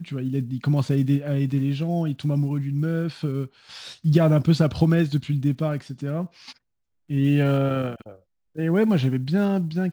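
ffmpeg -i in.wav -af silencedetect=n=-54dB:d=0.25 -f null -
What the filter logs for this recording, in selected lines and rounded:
silence_start: 6.58
silence_end: 7.09 | silence_duration: 0.51
silence_start: 8.22
silence_end: 8.55 | silence_duration: 0.33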